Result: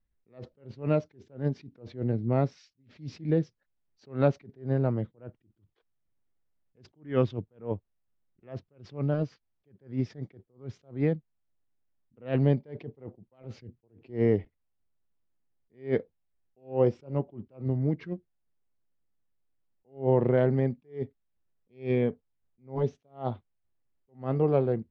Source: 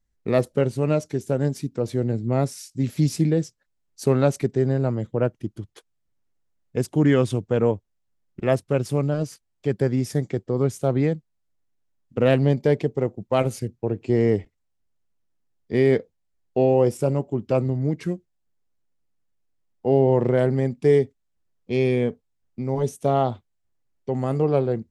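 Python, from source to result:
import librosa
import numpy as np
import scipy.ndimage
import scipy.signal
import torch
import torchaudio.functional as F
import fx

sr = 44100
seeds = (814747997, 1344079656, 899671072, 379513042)

y = scipy.signal.sosfilt(scipy.signal.bessel(8, 2800.0, 'lowpass', norm='mag', fs=sr, output='sos'), x)
y = fx.attack_slew(y, sr, db_per_s=200.0)
y = y * librosa.db_to_amplitude(-3.5)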